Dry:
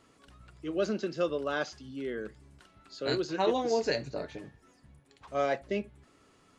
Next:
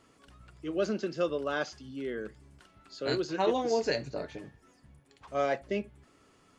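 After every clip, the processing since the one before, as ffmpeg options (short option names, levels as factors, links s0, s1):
-af "bandreject=f=3900:w=23"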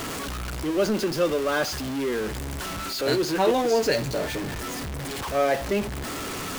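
-af "aeval=exprs='val(0)+0.5*0.0282*sgn(val(0))':c=same,volume=1.68"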